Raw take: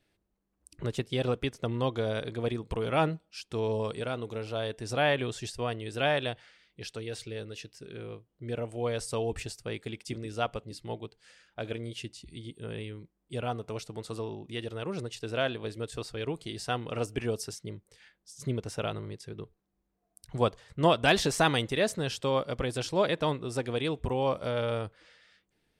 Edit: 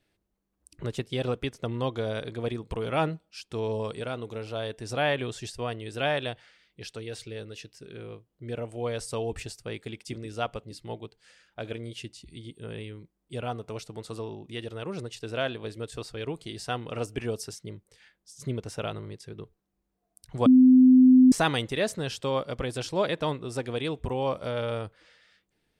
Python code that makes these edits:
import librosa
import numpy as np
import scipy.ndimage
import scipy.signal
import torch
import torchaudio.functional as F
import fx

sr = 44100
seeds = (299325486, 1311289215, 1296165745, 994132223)

y = fx.edit(x, sr, fx.bleep(start_s=20.46, length_s=0.86, hz=256.0, db=-12.0), tone=tone)